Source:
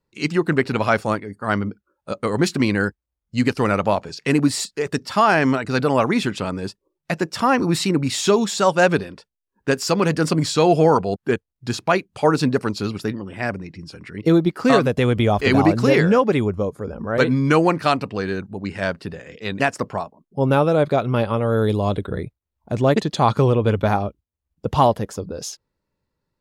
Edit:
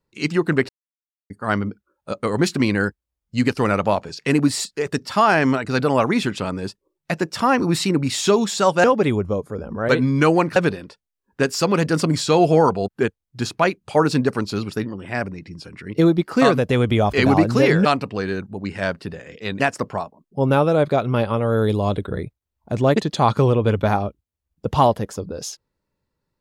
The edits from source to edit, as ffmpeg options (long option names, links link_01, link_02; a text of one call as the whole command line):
ffmpeg -i in.wav -filter_complex "[0:a]asplit=6[link_01][link_02][link_03][link_04][link_05][link_06];[link_01]atrim=end=0.69,asetpts=PTS-STARTPTS,afade=type=out:start_time=0.686:duration=0.004:curve=hsin[link_07];[link_02]atrim=start=0.69:end=1.3,asetpts=PTS-STARTPTS,volume=0[link_08];[link_03]atrim=start=1.3:end=8.842,asetpts=PTS-STARTPTS,afade=type=in:duration=0.004:curve=hsin[link_09];[link_04]atrim=start=16.128:end=17.852[link_10];[link_05]atrim=start=8.838:end=16.132[link_11];[link_06]atrim=start=17.848[link_12];[link_07][link_08][link_09]concat=n=3:v=0:a=1[link_13];[link_13][link_10]acrossfade=duration=0.004:curve1=hsin:curve2=hsin[link_14];[link_14][link_11]acrossfade=duration=0.004:curve1=hsin:curve2=hsin[link_15];[link_15][link_12]acrossfade=duration=0.004:curve1=hsin:curve2=hsin" out.wav